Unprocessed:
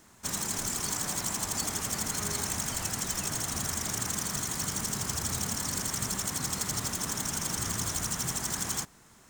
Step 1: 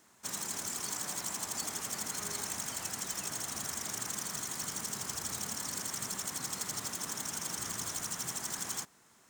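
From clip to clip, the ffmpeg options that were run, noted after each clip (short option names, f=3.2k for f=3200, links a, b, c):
-af "highpass=f=270:p=1,volume=-5dB"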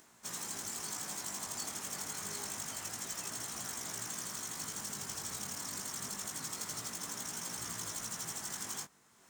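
-af "acompressor=mode=upward:threshold=-53dB:ratio=2.5,flanger=delay=17:depth=3.8:speed=0.27"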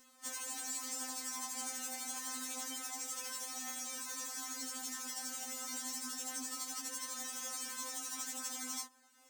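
-af "afftfilt=real='re*3.46*eq(mod(b,12),0)':imag='im*3.46*eq(mod(b,12),0)':win_size=2048:overlap=0.75,volume=1.5dB"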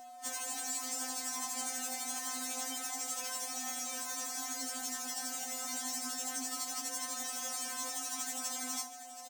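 -af "aeval=exprs='val(0)+0.00282*sin(2*PI*730*n/s)':c=same,aecho=1:1:728|1456|2184|2912|3640:0.224|0.112|0.056|0.028|0.014,volume=3dB"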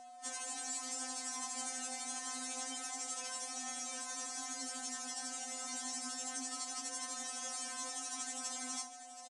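-af "aresample=22050,aresample=44100,volume=-3dB"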